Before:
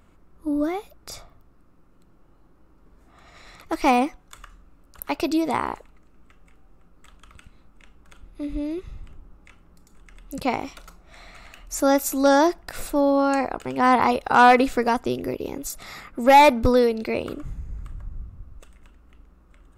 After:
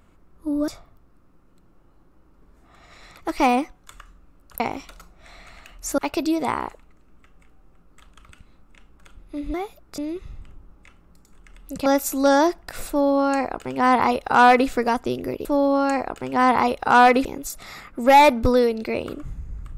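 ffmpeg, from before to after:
-filter_complex "[0:a]asplit=9[a][b][c][d][e][f][g][h][i];[a]atrim=end=0.682[j];[b]atrim=start=1.118:end=5.042[k];[c]atrim=start=10.478:end=11.862[l];[d]atrim=start=5.038:end=8.602[m];[e]atrim=start=0.678:end=1.122[n];[f]atrim=start=8.598:end=10.482[o];[g]atrim=start=11.858:end=15.452[p];[h]atrim=start=12.888:end=14.692[q];[i]atrim=start=15.448[r];[j][k]acrossfade=d=0.004:c1=hsin:c2=hsin[s];[s][l]acrossfade=d=0.004:c1=hsin:c2=hsin[t];[t][m]acrossfade=d=0.004:c1=hsin:c2=hsin[u];[u][n]acrossfade=d=0.004:c1=hsin:c2=hsin[v];[v][o]acrossfade=d=0.004:c1=hsin:c2=hsin[w];[w][p]acrossfade=d=0.004:c1=hsin:c2=hsin[x];[x][q]acrossfade=d=0.004:c1=hsin:c2=hsin[y];[y][r]acrossfade=d=0.004:c1=hsin:c2=hsin"

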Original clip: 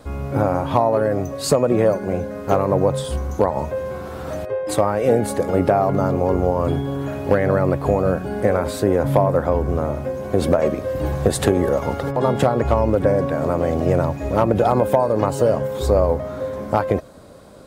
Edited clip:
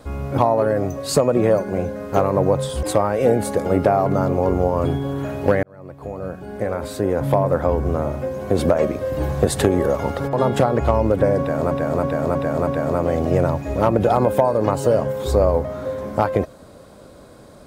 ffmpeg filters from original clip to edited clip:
-filter_complex "[0:a]asplit=8[a][b][c][d][e][f][g][h];[a]atrim=end=0.382[i];[b]atrim=start=0.728:end=3.182[j];[c]atrim=start=4.658:end=7.46,asetpts=PTS-STARTPTS,afade=t=out:st=2.798:d=0.004:c=hsin[k];[d]atrim=start=7.46:end=13.542,asetpts=PTS-STARTPTS,afade=t=in:d=2.04[l];[e]atrim=start=13.218:end=13.542[m];[f]atrim=start=13.218:end=13.542[n];[g]atrim=start=13.218:end=13.542[o];[h]atrim=start=13.218[p];[i][j]acrossfade=d=0.004:c1=hsin:c2=hsin[q];[k][l]concat=n=2:v=0:a=1[r];[q][r]acrossfade=d=0.004:c1=hsin:c2=hsin[s];[s][m]acrossfade=d=0.004:c1=hsin:c2=hsin[t];[t][n]acrossfade=d=0.004:c1=hsin:c2=hsin[u];[u][o]acrossfade=d=0.004:c1=hsin:c2=hsin[v];[v][p]acrossfade=d=0.004:c1=hsin:c2=hsin"

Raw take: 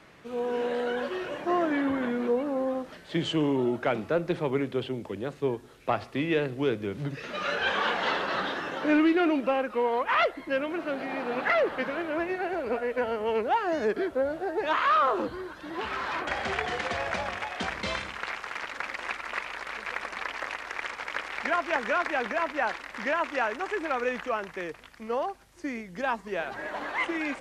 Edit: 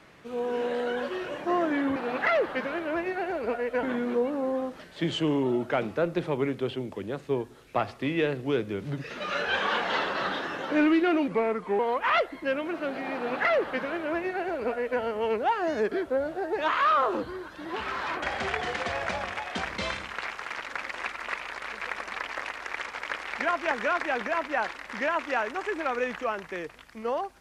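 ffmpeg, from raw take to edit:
-filter_complex "[0:a]asplit=5[a][b][c][d][e];[a]atrim=end=1.962[f];[b]atrim=start=11.188:end=13.062[g];[c]atrim=start=1.958:end=9.414[h];[d]atrim=start=9.41:end=9.84,asetpts=PTS-STARTPTS,asetrate=37044,aresample=44100[i];[e]atrim=start=9.836[j];[f][g]acrossfade=d=0.004:c1=hsin:c2=hsin[k];[k][h]acrossfade=d=0.004:c1=hsin:c2=hsin[l];[l][i]acrossfade=d=0.004:c1=hsin:c2=hsin[m];[m][j]acrossfade=d=0.004:c1=hsin:c2=hsin"

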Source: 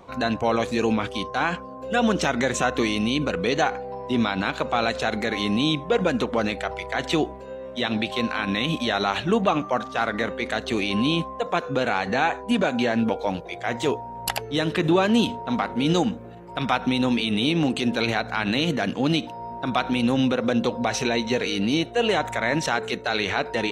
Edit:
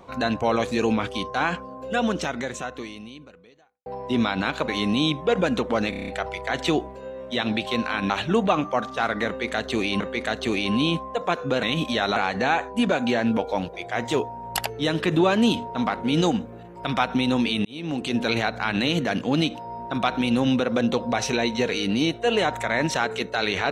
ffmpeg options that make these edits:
-filter_complex "[0:a]asplit=14[a][b][c][d][e][f][g][h][i][j][k][l][m][n];[a]atrim=end=3.86,asetpts=PTS-STARTPTS,afade=t=out:st=1.75:d=2.11:c=qua[o];[b]atrim=start=3.86:end=4.682,asetpts=PTS-STARTPTS,afade=t=in:d=0.004:c=hsin[p];[c]atrim=start=5.308:end=6.562[q];[d]atrim=start=6.528:end=6.562[r];[e]atrim=start=6.528:end=6.562[s];[f]atrim=start=6.528:end=6.562[t];[g]atrim=start=6.528:end=6.562[u];[h]atrim=start=6.528:end=6.562[v];[i]atrim=start=6.528:end=8.552[w];[j]atrim=start=9.078:end=10.982[x];[k]atrim=start=10.248:end=11.882[y];[l]atrim=start=8.548:end=9.082[z];[m]atrim=start=11.878:end=17.37,asetpts=PTS-STARTPTS,afade=t=out:st=5.488:d=0.004:c=hsin[aa];[n]atrim=start=17.37,asetpts=PTS-STARTPTS,afade=t=in:d=0.55[ab];[o][p]concat=n=2:v=0:a=1[ac];[ac][q]acrossfade=d=0.004:c1=hsin:c2=hsin[ad];[ad][r]acrossfade=d=0.004:c1=hsin:c2=hsin[ae];[ae][s]acrossfade=d=0.004:c1=hsin:c2=hsin[af];[af][t]acrossfade=d=0.004:c1=hsin:c2=hsin[ag];[ag][u]acrossfade=d=0.004:c1=hsin:c2=hsin[ah];[ah][v]acrossfade=d=0.004:c1=hsin:c2=hsin[ai];[ai][w]acrossfade=d=0.004:c1=hsin:c2=hsin[aj];[aj][x]acrossfade=d=0.004:c1=hsin:c2=hsin[ak];[ak][y]acrossfade=d=0.004:c1=hsin:c2=hsin[al];[al][z]acrossfade=d=0.004:c1=hsin:c2=hsin[am];[aa][ab]concat=n=2:v=0:a=1[an];[am][an]acrossfade=d=0.004:c1=hsin:c2=hsin"

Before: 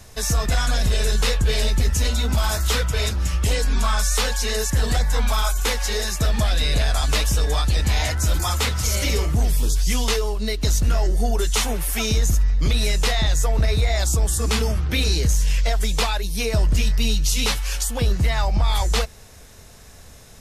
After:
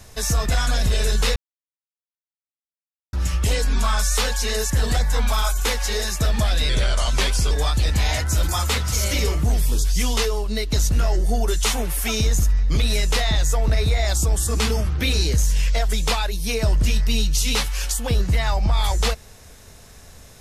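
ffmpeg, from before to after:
-filter_complex "[0:a]asplit=5[a][b][c][d][e];[a]atrim=end=1.36,asetpts=PTS-STARTPTS,afade=t=out:st=1.356:d=0.004:c=hsin[f];[b]atrim=start=1.36:end=3.13,asetpts=PTS-STARTPTS,volume=0[g];[c]atrim=start=3.13:end=6.694,asetpts=PTS-STARTPTS,afade=t=in:d=0.004:c=hsin[h];[d]atrim=start=6.69:end=7.42,asetpts=PTS-STARTPTS,asetrate=39249,aresample=44100[i];[e]atrim=start=7.416[j];[f][g][h]concat=n=3:v=0:a=1[k];[k][i]acrossfade=d=0.004:c1=hsin:c2=hsin[l];[l][j]acrossfade=d=0.004:c1=hsin:c2=hsin"

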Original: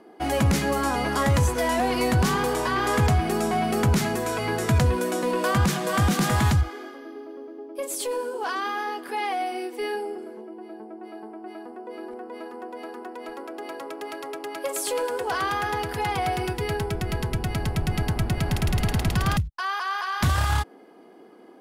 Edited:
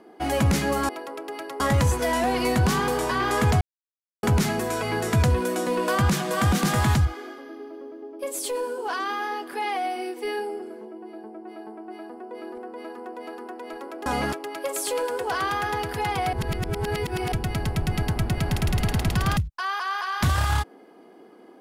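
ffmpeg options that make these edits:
-filter_complex "[0:a]asplit=9[a][b][c][d][e][f][g][h][i];[a]atrim=end=0.892[j];[b]atrim=start=13.618:end=14.332[k];[c]atrim=start=1.158:end=3.17,asetpts=PTS-STARTPTS,afade=t=out:st=2.008:d=0.004:c=hsin[l];[d]atrim=start=3.17:end=3.79,asetpts=PTS-STARTPTS,volume=0[m];[e]atrim=start=3.79:end=13.622,asetpts=PTS-STARTPTS,afade=t=in:d=0.004:c=hsin[n];[f]atrim=start=0.888:end=1.162[o];[g]atrim=start=14.328:end=16.332[p];[h]atrim=start=16.328:end=17.322,asetpts=PTS-STARTPTS,areverse[q];[i]atrim=start=17.318[r];[j][k]acrossfade=d=0.004:c1=hsin:c2=hsin[s];[l][m][n]concat=n=3:v=0:a=1[t];[s][t]acrossfade=d=0.004:c1=hsin:c2=hsin[u];[u][o]acrossfade=d=0.004:c1=hsin:c2=hsin[v];[v][p]acrossfade=d=0.004:c1=hsin:c2=hsin[w];[w][q]acrossfade=d=0.004:c1=hsin:c2=hsin[x];[x][r]acrossfade=d=0.004:c1=hsin:c2=hsin"

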